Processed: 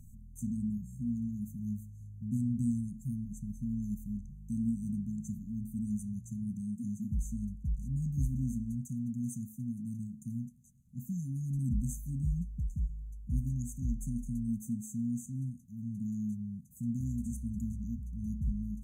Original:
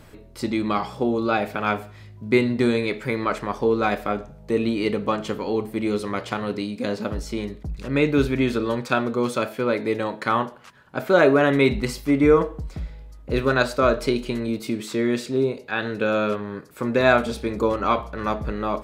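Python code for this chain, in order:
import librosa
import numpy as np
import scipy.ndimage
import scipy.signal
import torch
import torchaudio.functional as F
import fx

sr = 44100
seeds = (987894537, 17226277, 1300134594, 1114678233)

y = fx.brickwall_bandstop(x, sr, low_hz=250.0, high_hz=6000.0)
y = fx.low_shelf(y, sr, hz=76.0, db=7.0)
y = y * 10.0 ** (-6.0 / 20.0)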